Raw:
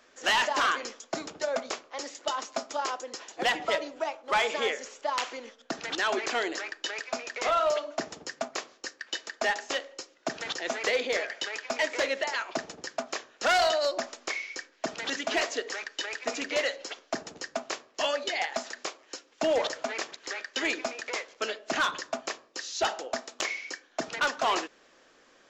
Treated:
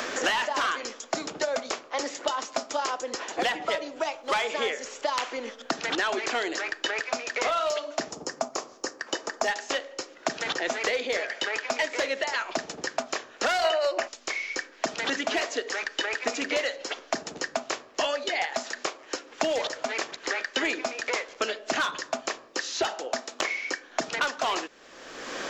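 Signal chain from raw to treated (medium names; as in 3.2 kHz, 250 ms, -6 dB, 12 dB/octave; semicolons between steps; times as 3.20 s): 8.11–9.48 s: high-order bell 2.5 kHz -9.5 dB; 13.65–14.08 s: time-frequency box 310–3100 Hz +12 dB; three bands compressed up and down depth 100%; trim +1 dB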